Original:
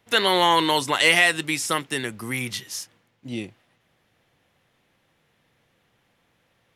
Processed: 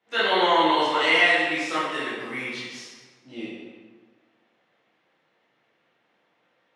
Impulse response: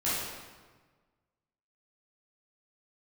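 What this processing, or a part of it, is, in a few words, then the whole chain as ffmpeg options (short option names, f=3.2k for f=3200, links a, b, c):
supermarket ceiling speaker: -filter_complex "[0:a]highpass=320,lowpass=6k,highshelf=f=6k:g=-11.5[a];[1:a]atrim=start_sample=2205[b];[a][b]afir=irnorm=-1:irlink=0,volume=-8.5dB"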